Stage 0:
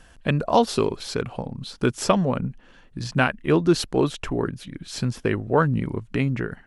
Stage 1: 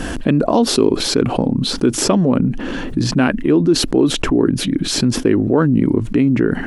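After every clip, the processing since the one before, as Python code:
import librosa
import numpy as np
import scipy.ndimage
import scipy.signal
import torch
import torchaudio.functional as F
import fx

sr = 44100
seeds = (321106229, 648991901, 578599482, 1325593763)

y = fx.peak_eq(x, sr, hz=290.0, db=14.5, octaves=1.2)
y = fx.env_flatten(y, sr, amount_pct=70)
y = y * librosa.db_to_amplitude(-8.0)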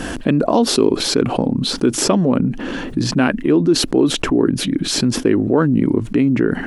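y = fx.low_shelf(x, sr, hz=97.0, db=-6.5)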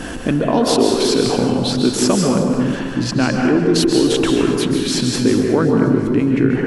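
y = fx.echo_feedback(x, sr, ms=361, feedback_pct=49, wet_db=-19.5)
y = fx.rev_plate(y, sr, seeds[0], rt60_s=1.6, hf_ratio=0.6, predelay_ms=120, drr_db=0.5)
y = y * librosa.db_to_amplitude(-2.0)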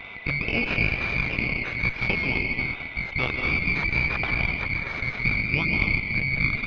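y = fx.band_swap(x, sr, width_hz=2000)
y = fx.cheby_harmonics(y, sr, harmonics=(2, 3, 6), levels_db=(-8, -18, -21), full_scale_db=-0.5)
y = scipy.ndimage.gaussian_filter1d(y, 3.1, mode='constant')
y = y * librosa.db_to_amplitude(-4.0)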